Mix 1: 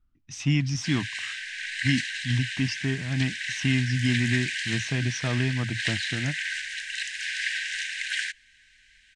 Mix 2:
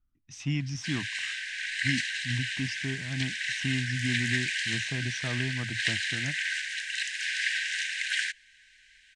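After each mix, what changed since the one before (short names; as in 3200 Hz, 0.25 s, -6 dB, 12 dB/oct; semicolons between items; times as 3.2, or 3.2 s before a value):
speech -6.5 dB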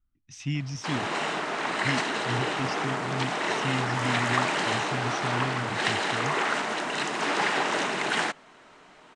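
background: remove brick-wall FIR high-pass 1500 Hz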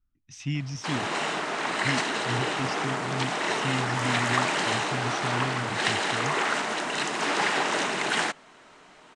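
background: add high shelf 5200 Hz +5 dB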